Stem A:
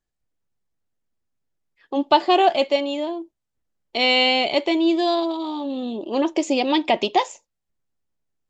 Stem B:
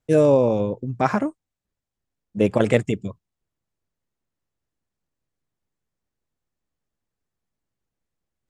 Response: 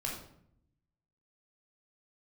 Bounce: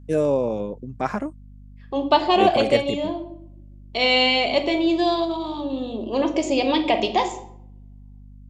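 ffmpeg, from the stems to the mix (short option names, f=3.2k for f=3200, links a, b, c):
-filter_complex "[0:a]aeval=exprs='val(0)+0.00158*(sin(2*PI*50*n/s)+sin(2*PI*2*50*n/s)/2+sin(2*PI*3*50*n/s)/3+sin(2*PI*4*50*n/s)/4+sin(2*PI*5*50*n/s)/5)':c=same,volume=-4.5dB,asplit=2[a][b];[b]volume=-3.5dB[c];[1:a]highpass=150,aeval=exprs='val(0)+0.01*(sin(2*PI*50*n/s)+sin(2*PI*2*50*n/s)/2+sin(2*PI*3*50*n/s)/3+sin(2*PI*4*50*n/s)/4+sin(2*PI*5*50*n/s)/5)':c=same,volume=-4.5dB[d];[2:a]atrim=start_sample=2205[e];[c][e]afir=irnorm=-1:irlink=0[f];[a][d][f]amix=inputs=3:normalize=0"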